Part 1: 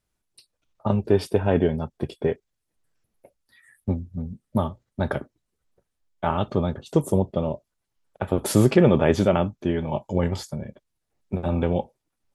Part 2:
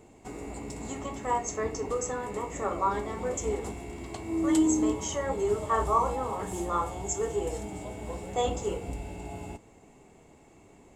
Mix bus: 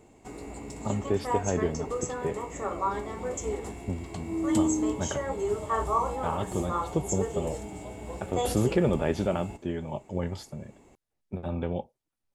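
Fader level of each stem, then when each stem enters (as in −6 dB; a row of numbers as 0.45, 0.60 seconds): −8.0, −1.5 decibels; 0.00, 0.00 seconds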